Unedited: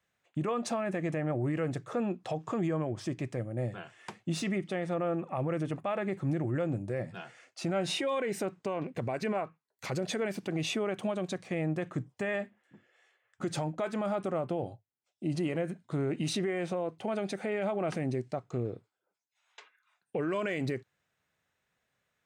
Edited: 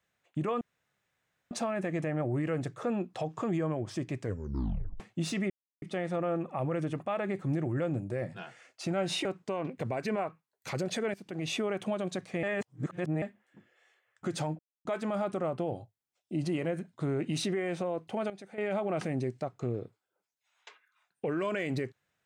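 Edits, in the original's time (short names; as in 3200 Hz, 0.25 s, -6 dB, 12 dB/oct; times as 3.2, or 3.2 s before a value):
0.61 insert room tone 0.90 s
3.3 tape stop 0.80 s
4.6 insert silence 0.32 s
8.03–8.42 cut
10.31–10.73 fade in, from -15 dB
11.6–12.39 reverse
13.76 insert silence 0.26 s
17.21–17.49 gain -12 dB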